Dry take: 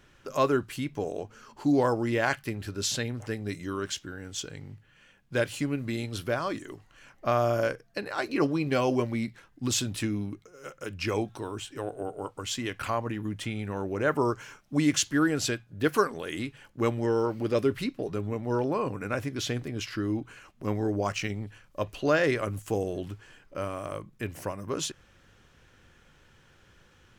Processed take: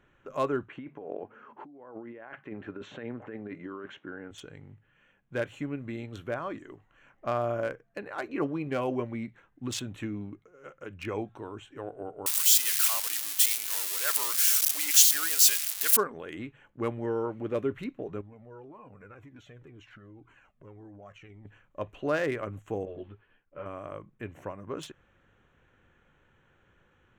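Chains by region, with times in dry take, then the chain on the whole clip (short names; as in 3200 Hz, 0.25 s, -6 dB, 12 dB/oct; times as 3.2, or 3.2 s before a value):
0.68–4.31 BPF 210–2100 Hz + negative-ratio compressor -37 dBFS
12.26–15.97 switching spikes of -18.5 dBFS + Bessel high-pass 1300 Hz + high shelf 2800 Hz +10 dB
18.21–21.45 compressor 4:1, threshold -37 dBFS + cascading flanger falling 1.9 Hz
22.85–23.66 expander -49 dBFS + steep low-pass 4800 Hz + ensemble effect
whole clip: Wiener smoothing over 9 samples; low shelf 180 Hz -4 dB; gain -3.5 dB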